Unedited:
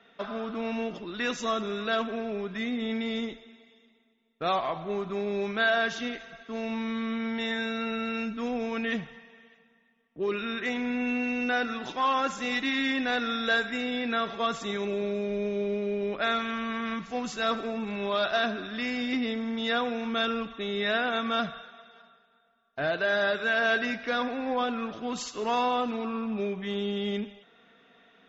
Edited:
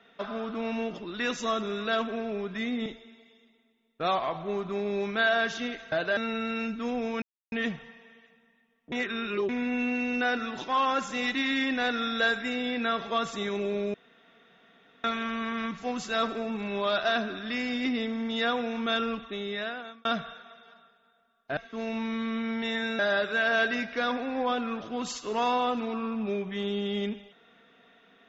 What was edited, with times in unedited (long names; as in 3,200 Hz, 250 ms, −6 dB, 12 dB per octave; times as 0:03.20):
0:02.86–0:03.27: remove
0:06.33–0:07.75: swap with 0:22.85–0:23.10
0:08.80: splice in silence 0.30 s
0:10.20–0:10.77: reverse
0:15.22–0:16.32: fill with room tone
0:20.45–0:21.33: fade out